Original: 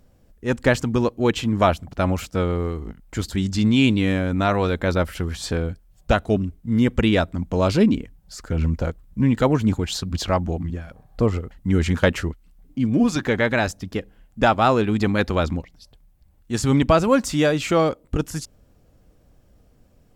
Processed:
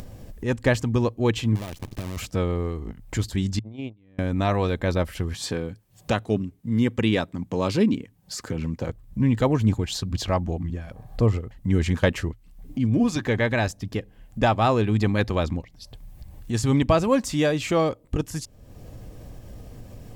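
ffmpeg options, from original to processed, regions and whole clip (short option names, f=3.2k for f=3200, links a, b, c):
-filter_complex "[0:a]asettb=1/sr,asplit=3[a][b][c];[a]atrim=end=1.554[d];[b]atrim=start=1.55:end=2.17,asetpts=PTS-STARTPTS,afade=t=in:d=0.004:c=qsin,afade=t=out:st=0.616:d=0.004:c=qsin,equalizer=f=980:t=o:w=1.9:g=-9,acompressor=threshold=-27dB:ratio=12:attack=3.2:release=140:knee=1:detection=peak,acrusher=bits=6:dc=4:mix=0:aa=0.000001[e];[c]atrim=start=2.166[f];[d][e]acrossfade=d=0.004:c1=hsin:c2=qsin[g];[g][f]acrossfade=d=0.004:c1=qsin:c2=hsin,asettb=1/sr,asplit=3[h][i][j];[h]atrim=end=3.594[k];[i]atrim=start=3.59:end=4.19,asetpts=PTS-STARTPTS,afade=t=in:d=0.004:c=qsin,afade=t=out:st=0.596:d=0.004:c=qsin,lowpass=f=1.3k:p=1,agate=range=-43dB:threshold=-14dB:ratio=16:release=100:detection=peak[l];[j]atrim=start=4.186[m];[k][l]acrossfade=d=0.004:c1=hsin:c2=qsin[n];[n][m]acrossfade=d=0.004:c1=qsin:c2=hsin,asettb=1/sr,asplit=3[o][p][q];[o]atrim=end=5.344[r];[p]atrim=start=5.34:end=8.89,asetpts=PTS-STARTPTS,afade=t=in:d=0.004:c=qsin,afade=t=out:st=3.546:d=0.004:c=qsin,highpass=140,equalizer=f=650:t=o:w=0.23:g=-6.5[s];[q]atrim=start=8.886[t];[r][s]acrossfade=d=0.004:c1=hsin:c2=qsin[u];[u][t]acrossfade=d=0.004:c1=qsin:c2=hsin,equalizer=f=110:w=5.7:g=8.5,bandreject=f=1.4k:w=7.5,acompressor=mode=upward:threshold=-22dB:ratio=2.5,volume=-3dB"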